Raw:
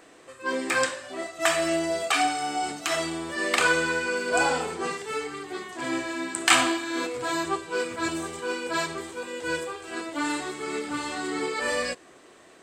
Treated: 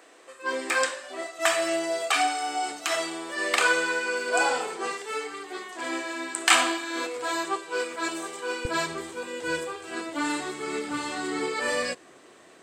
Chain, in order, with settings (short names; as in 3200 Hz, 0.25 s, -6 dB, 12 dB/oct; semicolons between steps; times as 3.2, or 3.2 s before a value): HPF 370 Hz 12 dB/oct, from 8.65 s 90 Hz